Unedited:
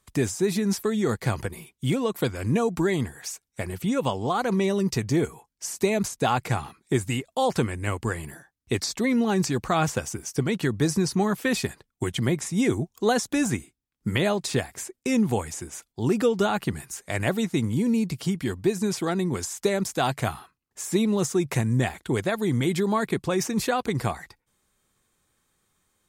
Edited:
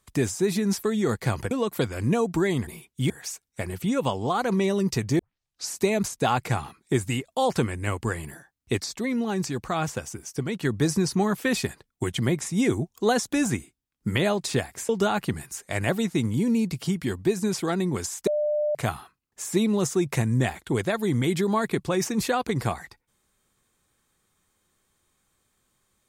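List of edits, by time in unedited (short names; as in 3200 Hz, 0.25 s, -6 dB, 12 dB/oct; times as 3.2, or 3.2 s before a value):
1.51–1.94 move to 3.1
5.19 tape start 0.53 s
8.78–10.65 gain -4 dB
14.89–16.28 cut
19.66–20.14 bleep 598 Hz -21.5 dBFS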